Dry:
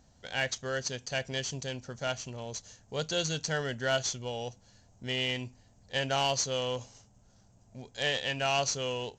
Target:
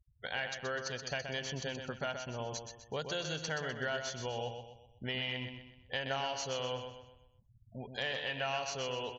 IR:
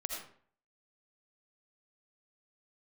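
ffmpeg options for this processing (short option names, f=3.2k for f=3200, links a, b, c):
-af "lowpass=5.9k,equalizer=f=1.3k:t=o:w=2.6:g=7,afftfilt=real='re*gte(hypot(re,im),0.00708)':imag='im*gte(hypot(re,im),0.00708)':win_size=1024:overlap=0.75,acompressor=threshold=-36dB:ratio=4,aecho=1:1:126|252|378|504|630:0.447|0.183|0.0751|0.0308|0.0126"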